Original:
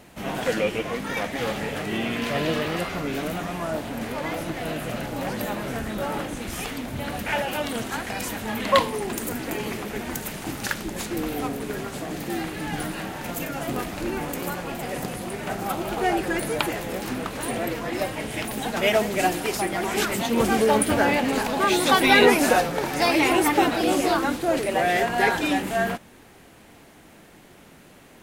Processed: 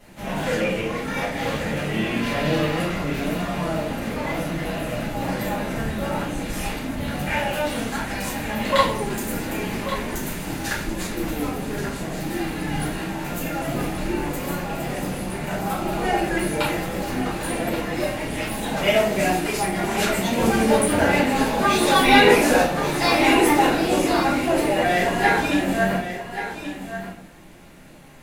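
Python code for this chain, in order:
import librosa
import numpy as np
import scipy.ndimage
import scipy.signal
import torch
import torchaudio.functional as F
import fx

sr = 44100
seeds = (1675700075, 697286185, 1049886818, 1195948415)

p1 = x + fx.echo_single(x, sr, ms=1130, db=-10.5, dry=0)
p2 = fx.room_shoebox(p1, sr, seeds[0], volume_m3=61.0, walls='mixed', distance_m=2.1)
y = F.gain(torch.from_numpy(p2), -8.0).numpy()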